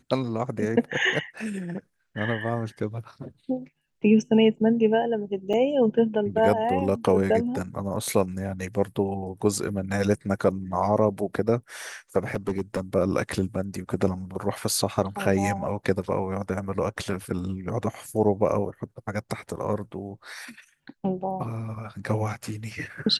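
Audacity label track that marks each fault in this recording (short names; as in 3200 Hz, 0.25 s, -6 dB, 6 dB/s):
5.530000	5.540000	gap 5.6 ms
12.340000	12.800000	clipped -20.5 dBFS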